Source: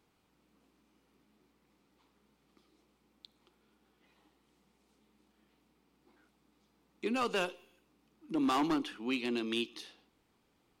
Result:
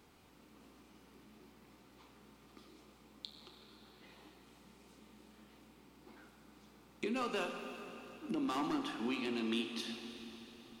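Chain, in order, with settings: compressor 4:1, threshold -48 dBFS, peak gain reduction 16.5 dB; on a send: reverb RT60 3.8 s, pre-delay 6 ms, DRR 4 dB; on the sum: gain +9 dB

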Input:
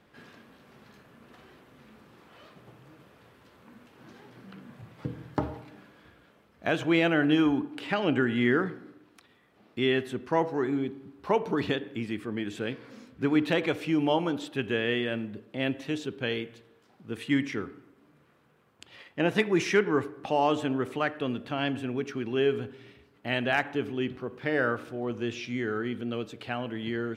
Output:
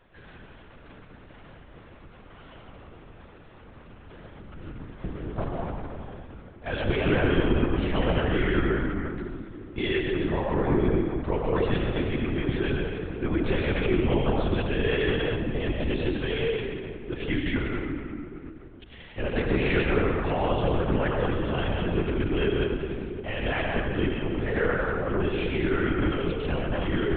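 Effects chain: limiter -20.5 dBFS, peak gain reduction 8 dB; reverb RT60 2.6 s, pre-delay 87 ms, DRR -2.5 dB; LPC vocoder at 8 kHz whisper; gain +2 dB

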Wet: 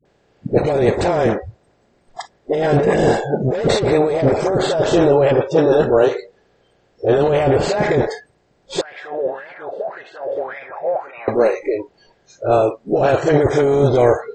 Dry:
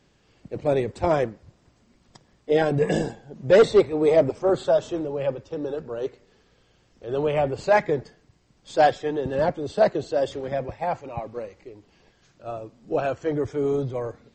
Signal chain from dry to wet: per-bin compression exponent 0.6; spectral noise reduction 28 dB; negative-ratio compressor -21 dBFS, ratio -1; dispersion highs, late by 54 ms, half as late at 530 Hz; 8.81–11.28 wah 1.8 Hz 510–2300 Hz, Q 5.6; gain +7 dB

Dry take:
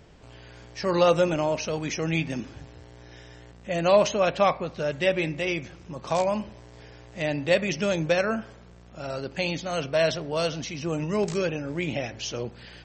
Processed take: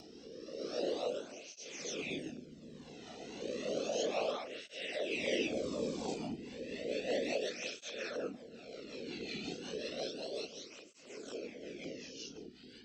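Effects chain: spectral swells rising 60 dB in 2.01 s; Doppler pass-by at 5.56, 5 m/s, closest 4.6 m; whisperiser; compressor 5:1, threshold -28 dBFS, peak gain reduction 11 dB; ten-band EQ 125 Hz -10 dB, 250 Hz +5 dB, 500 Hz +4 dB, 1000 Hz -9 dB, 2000 Hz -4 dB, 4000 Hz +4 dB; reverb RT60 1.3 s, pre-delay 3 ms, DRR 13 dB; LFO notch saw down 3.8 Hz 320–1600 Hz; rotary speaker horn 0.9 Hz, later 5.5 Hz, at 5.91; upward compressor, threshold -42 dBFS; tape flanging out of phase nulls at 0.32 Hz, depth 1.9 ms; gain +1 dB

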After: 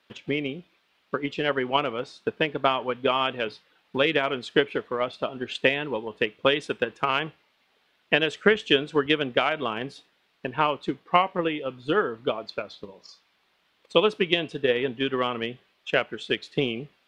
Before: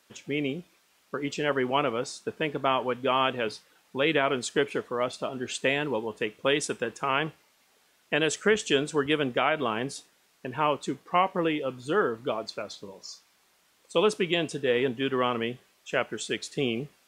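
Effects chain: resonant high shelf 5100 Hz -12.5 dB, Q 1.5; transient shaper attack +8 dB, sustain 0 dB; gain -2 dB

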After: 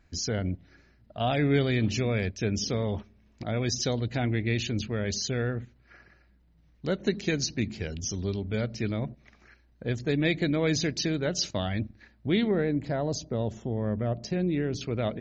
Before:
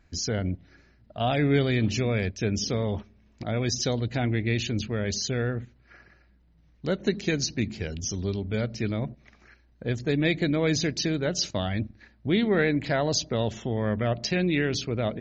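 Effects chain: 12.51–14.81 bell 2800 Hz -13 dB 2.5 oct; gain -1.5 dB

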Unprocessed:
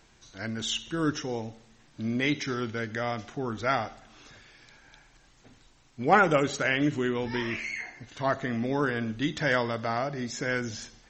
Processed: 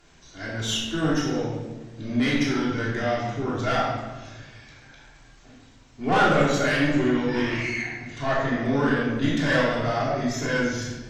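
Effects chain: tube stage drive 22 dB, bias 0.45; shoebox room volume 730 m³, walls mixed, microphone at 3.2 m

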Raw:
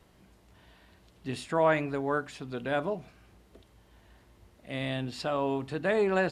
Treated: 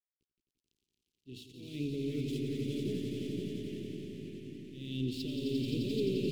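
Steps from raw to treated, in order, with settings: LPF 4100 Hz 12 dB/oct; de-hum 58.75 Hz, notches 4; crossover distortion -50 dBFS; reverse; compressor, threshold -34 dBFS, peak gain reduction 13.5 dB; reverse; limiter -31 dBFS, peak gain reduction 7.5 dB; auto swell 0.27 s; elliptic band-stop 390–3000 Hz, stop band 40 dB; on a send: swelling echo 87 ms, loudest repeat 5, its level -7 dB; on the sum: echoes that change speed 0.143 s, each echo -2 st, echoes 3, each echo -6 dB; gain +7.5 dB

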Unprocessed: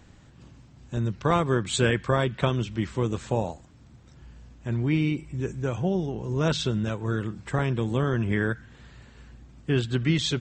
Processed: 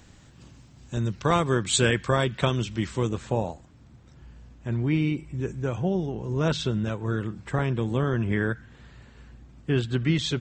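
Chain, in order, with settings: high shelf 3500 Hz +7.5 dB, from 3.09 s -3.5 dB

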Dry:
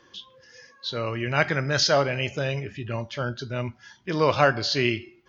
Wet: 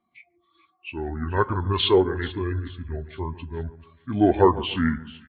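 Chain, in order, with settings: pitch shift -7 st; split-band echo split 1600 Hz, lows 0.143 s, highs 0.436 s, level -11 dB; spectral expander 1.5:1; gain +2 dB

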